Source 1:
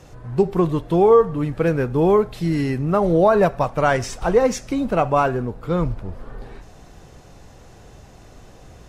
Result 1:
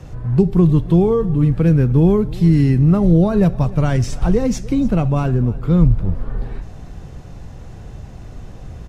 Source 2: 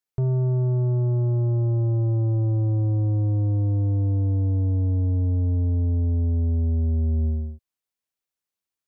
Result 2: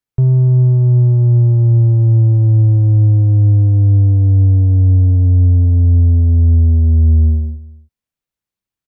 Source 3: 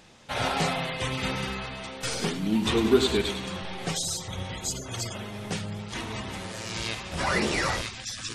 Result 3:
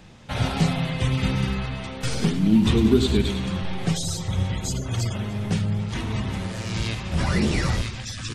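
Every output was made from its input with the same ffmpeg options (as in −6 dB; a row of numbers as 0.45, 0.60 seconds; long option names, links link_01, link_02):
-filter_complex "[0:a]acrossover=split=340|3000[link_01][link_02][link_03];[link_02]acompressor=threshold=-37dB:ratio=2[link_04];[link_01][link_04][link_03]amix=inputs=3:normalize=0,bass=frequency=250:gain=10,treble=frequency=4000:gain=-4,aecho=1:1:298:0.0944,volume=2.5dB"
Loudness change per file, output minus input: +3.5, +12.0, +4.5 LU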